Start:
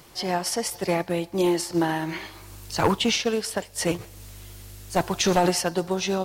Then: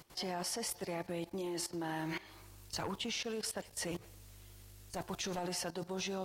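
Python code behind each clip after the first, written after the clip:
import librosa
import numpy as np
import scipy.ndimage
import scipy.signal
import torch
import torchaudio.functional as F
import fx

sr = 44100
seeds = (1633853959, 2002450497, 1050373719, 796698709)

y = fx.level_steps(x, sr, step_db=17)
y = y * 10.0 ** (-4.5 / 20.0)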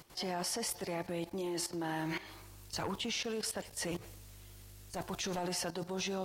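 y = fx.transient(x, sr, attack_db=-2, sustain_db=3)
y = y * 10.0 ** (2.0 / 20.0)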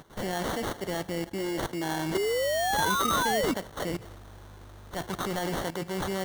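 y = fx.spec_paint(x, sr, seeds[0], shape='rise', start_s=2.14, length_s=1.4, low_hz=370.0, high_hz=2300.0, level_db=-33.0)
y = fx.sample_hold(y, sr, seeds[1], rate_hz=2500.0, jitter_pct=0)
y = y * 10.0 ** (6.0 / 20.0)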